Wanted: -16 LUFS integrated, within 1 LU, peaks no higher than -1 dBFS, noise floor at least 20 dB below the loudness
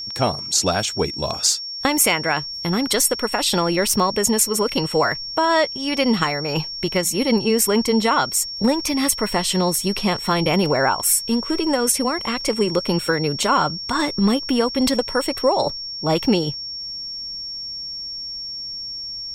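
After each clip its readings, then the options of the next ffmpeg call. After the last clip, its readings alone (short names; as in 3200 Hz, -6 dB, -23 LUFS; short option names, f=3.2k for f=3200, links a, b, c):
steady tone 5500 Hz; tone level -28 dBFS; loudness -20.0 LUFS; peak -4.0 dBFS; loudness target -16.0 LUFS
-> -af "bandreject=f=5.5k:w=30"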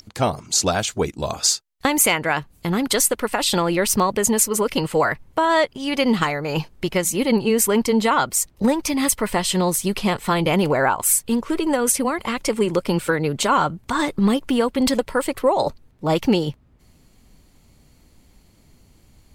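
steady tone none; loudness -20.5 LUFS; peak -4.0 dBFS; loudness target -16.0 LUFS
-> -af "volume=4.5dB,alimiter=limit=-1dB:level=0:latency=1"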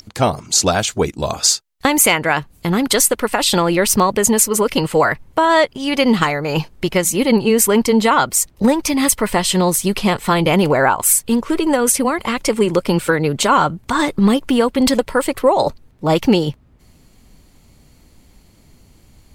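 loudness -16.0 LUFS; peak -1.0 dBFS; noise floor -51 dBFS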